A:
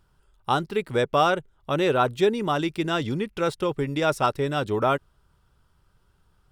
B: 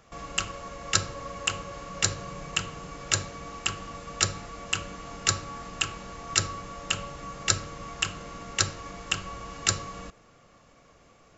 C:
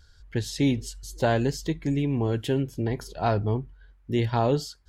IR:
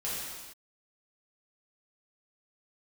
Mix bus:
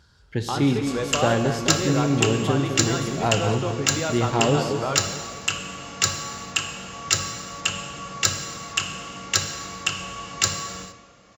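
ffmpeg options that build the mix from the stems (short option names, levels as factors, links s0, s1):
-filter_complex "[0:a]lowpass=6300,acompressor=threshold=0.0178:ratio=2,volume=1.12,asplit=2[s0][s1];[s1]volume=0.335[s2];[1:a]equalizer=f=4800:w=0.46:g=4,acontrast=53,adelay=750,volume=0.501,asplit=2[s3][s4];[s4]volume=0.355[s5];[2:a]highshelf=f=8400:g=-5.5,volume=1.06,asplit=3[s6][s7][s8];[s7]volume=0.237[s9];[s8]volume=0.422[s10];[3:a]atrim=start_sample=2205[s11];[s2][s5][s9]amix=inputs=3:normalize=0[s12];[s12][s11]afir=irnorm=-1:irlink=0[s13];[s10]aecho=0:1:211|422|633|844|1055|1266|1477|1688:1|0.55|0.303|0.166|0.0915|0.0503|0.0277|0.0152[s14];[s0][s3][s6][s13][s14]amix=inputs=5:normalize=0,highpass=78"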